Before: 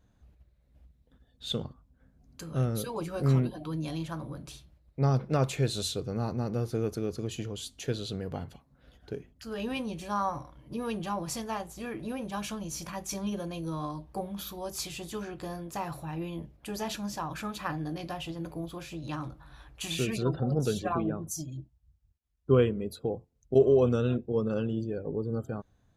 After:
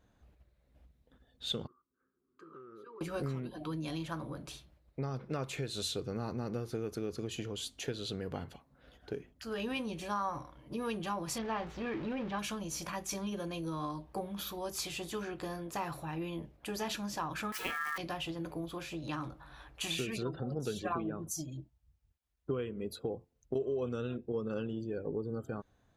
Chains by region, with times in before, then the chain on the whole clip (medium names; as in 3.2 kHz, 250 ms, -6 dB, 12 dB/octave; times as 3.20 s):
1.67–3.01 s: two resonant band-passes 680 Hz, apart 1.7 oct + compression 10:1, threshold -48 dBFS
11.38–12.39 s: jump at every zero crossing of -38 dBFS + distance through air 240 m
17.52–17.98 s: zero-crossing glitches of -32 dBFS + ring modulator 1.5 kHz
whole clip: dynamic bell 670 Hz, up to -5 dB, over -45 dBFS, Q 1.3; compression 12:1, threshold -31 dBFS; tone controls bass -7 dB, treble -4 dB; trim +2 dB